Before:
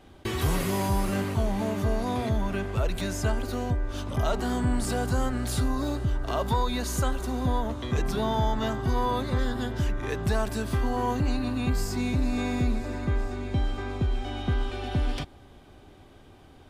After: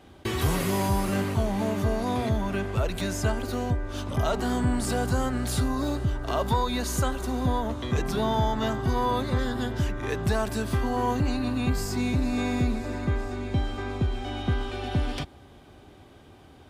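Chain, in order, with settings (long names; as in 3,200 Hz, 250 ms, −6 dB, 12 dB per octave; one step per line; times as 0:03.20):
high-pass filter 50 Hz
level +1.5 dB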